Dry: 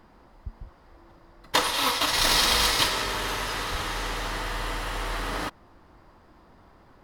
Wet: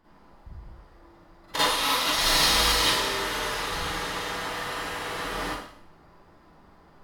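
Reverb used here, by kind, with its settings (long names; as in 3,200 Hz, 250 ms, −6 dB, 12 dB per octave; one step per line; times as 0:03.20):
four-comb reverb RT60 0.62 s, DRR −10 dB
level −10 dB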